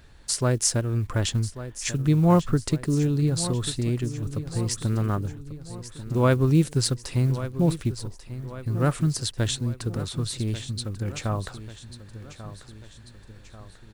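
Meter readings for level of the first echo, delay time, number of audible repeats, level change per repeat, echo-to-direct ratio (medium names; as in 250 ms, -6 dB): -13.5 dB, 1141 ms, 3, -5.5 dB, -12.0 dB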